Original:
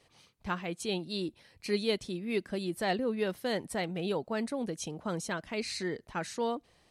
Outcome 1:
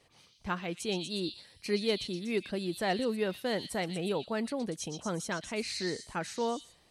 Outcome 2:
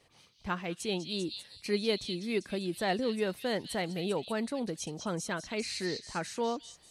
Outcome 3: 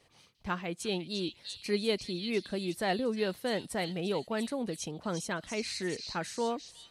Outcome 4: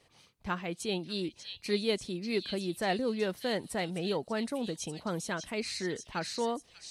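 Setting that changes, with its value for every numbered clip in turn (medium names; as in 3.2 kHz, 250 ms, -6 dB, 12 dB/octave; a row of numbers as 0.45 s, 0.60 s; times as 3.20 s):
repeats whose band climbs or falls, time: 120 ms, 197 ms, 347 ms, 591 ms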